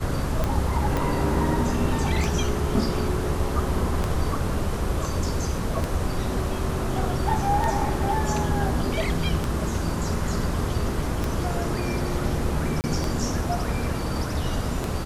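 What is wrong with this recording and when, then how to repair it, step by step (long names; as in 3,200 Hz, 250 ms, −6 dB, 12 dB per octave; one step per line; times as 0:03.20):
scratch tick 33 1/3 rpm −12 dBFS
0:00.97: click
0:12.81–0:12.84: drop-out 29 ms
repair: click removal
repair the gap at 0:12.81, 29 ms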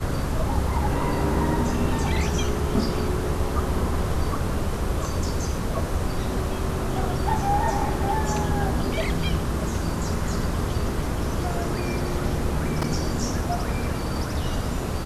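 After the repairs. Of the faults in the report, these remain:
0:00.97: click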